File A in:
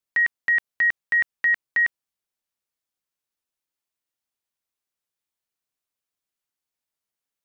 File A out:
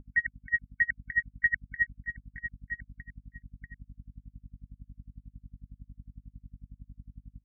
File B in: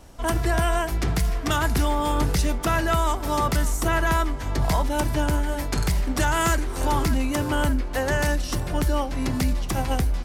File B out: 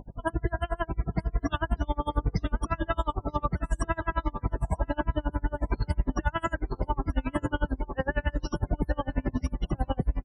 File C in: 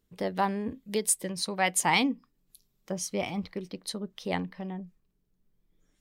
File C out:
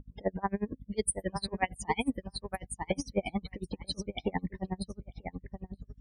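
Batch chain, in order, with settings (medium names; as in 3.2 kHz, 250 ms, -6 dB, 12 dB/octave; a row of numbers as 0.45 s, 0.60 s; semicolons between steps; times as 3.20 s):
peaking EQ 6.7 kHz -4 dB 0.33 oct; in parallel at +1 dB: peak limiter -18.5 dBFS; on the sum: compression 16:1, threshold -19 dBFS; loudest bins only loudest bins 32; hum 50 Hz, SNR 13 dB; on a send: feedback delay 939 ms, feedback 16%, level -9 dB; on the sum: logarithmic tremolo 11 Hz, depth 33 dB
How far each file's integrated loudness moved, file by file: -10.0 LU, -7.0 LU, -5.5 LU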